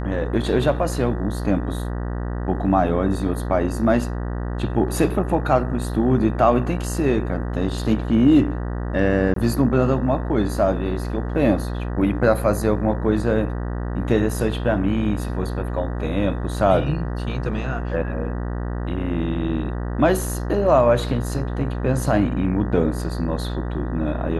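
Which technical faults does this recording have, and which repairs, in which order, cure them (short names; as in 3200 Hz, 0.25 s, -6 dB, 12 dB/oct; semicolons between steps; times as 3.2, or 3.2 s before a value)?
buzz 60 Hz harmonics 32 -26 dBFS
9.34–9.36 gap 23 ms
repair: de-hum 60 Hz, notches 32; interpolate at 9.34, 23 ms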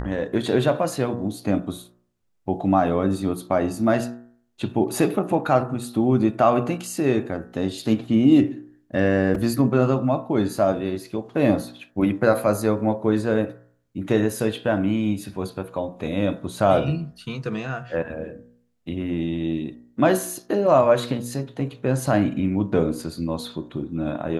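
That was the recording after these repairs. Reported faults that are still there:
none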